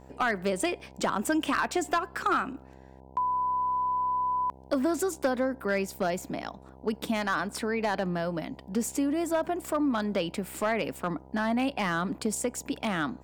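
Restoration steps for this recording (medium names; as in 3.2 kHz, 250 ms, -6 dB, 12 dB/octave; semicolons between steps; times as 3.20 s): clip repair -19 dBFS; de-hum 65.6 Hz, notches 15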